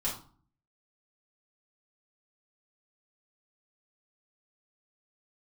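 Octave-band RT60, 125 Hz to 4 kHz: 0.75 s, 0.65 s, 0.40 s, 0.45 s, 0.30 s, 0.30 s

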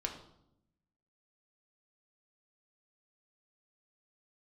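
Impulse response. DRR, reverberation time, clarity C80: 1.5 dB, 0.80 s, 11.0 dB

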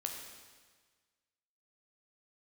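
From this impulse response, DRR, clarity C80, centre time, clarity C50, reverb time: 1.5 dB, 5.5 dB, 50 ms, 4.0 dB, 1.5 s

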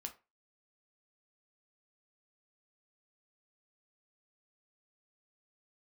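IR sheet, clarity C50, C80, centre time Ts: 14.5 dB, 21.5 dB, 8 ms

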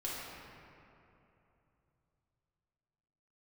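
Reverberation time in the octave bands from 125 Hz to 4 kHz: 4.3 s, 3.3 s, 3.1 s, 2.9 s, 2.4 s, 1.5 s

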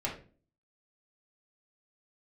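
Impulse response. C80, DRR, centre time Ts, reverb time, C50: 13.0 dB, -5.0 dB, 24 ms, 0.40 s, 7.5 dB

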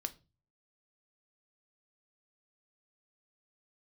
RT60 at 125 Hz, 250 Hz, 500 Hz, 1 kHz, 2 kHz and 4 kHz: 0.65 s, 0.45 s, 0.35 s, 0.30 s, 0.25 s, 0.25 s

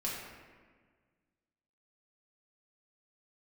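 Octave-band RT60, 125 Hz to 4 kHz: 2.0 s, 2.0 s, 1.7 s, 1.5 s, 1.5 s, 0.95 s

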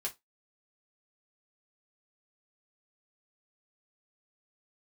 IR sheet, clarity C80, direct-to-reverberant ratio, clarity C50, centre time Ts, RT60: 31.0 dB, -3.0 dB, 19.0 dB, 12 ms, 0.20 s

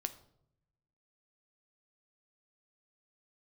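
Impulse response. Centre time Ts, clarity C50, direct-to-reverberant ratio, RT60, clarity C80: 5 ms, 14.5 dB, 9.0 dB, 0.75 s, 18.0 dB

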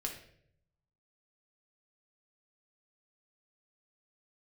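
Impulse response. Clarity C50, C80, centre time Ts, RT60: 6.5 dB, 10.0 dB, 23 ms, 0.65 s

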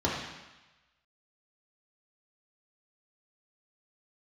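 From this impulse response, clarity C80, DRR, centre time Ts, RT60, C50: 4.0 dB, -6.5 dB, 59 ms, 1.1 s, 1.5 dB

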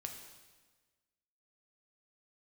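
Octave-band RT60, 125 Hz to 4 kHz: 1.4 s, 1.5 s, 1.4 s, 1.3 s, 1.3 s, 1.3 s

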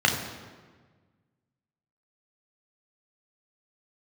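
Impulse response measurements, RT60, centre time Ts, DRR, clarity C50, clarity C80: 1.5 s, 36 ms, 0.5 dB, 6.0 dB, 8.0 dB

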